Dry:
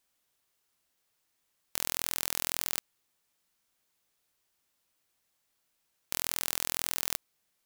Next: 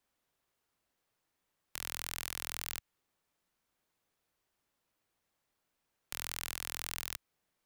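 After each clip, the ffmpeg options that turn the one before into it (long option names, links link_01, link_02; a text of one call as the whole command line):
ffmpeg -i in.wav -filter_complex "[0:a]highshelf=frequency=2500:gain=-10.5,acrossover=split=100|1300|4600[link_01][link_02][link_03][link_04];[link_02]alimiter=level_in=18.5dB:limit=-24dB:level=0:latency=1:release=149,volume=-18.5dB[link_05];[link_01][link_05][link_03][link_04]amix=inputs=4:normalize=0,volume=1.5dB" out.wav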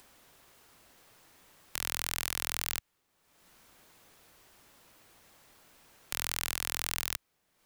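ffmpeg -i in.wav -af "acompressor=mode=upward:threshold=-52dB:ratio=2.5,volume=6dB" out.wav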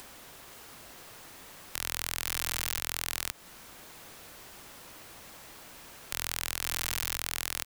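ffmpeg -i in.wav -af "aecho=1:1:519:0.376,alimiter=level_in=19.5dB:limit=-1dB:release=50:level=0:latency=1,volume=-8.5dB" out.wav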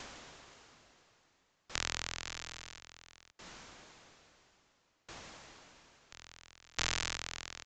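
ffmpeg -i in.wav -af "aresample=16000,aresample=44100,aeval=exprs='val(0)*pow(10,-31*if(lt(mod(0.59*n/s,1),2*abs(0.59)/1000),1-mod(0.59*n/s,1)/(2*abs(0.59)/1000),(mod(0.59*n/s,1)-2*abs(0.59)/1000)/(1-2*abs(0.59)/1000))/20)':channel_layout=same,volume=3.5dB" out.wav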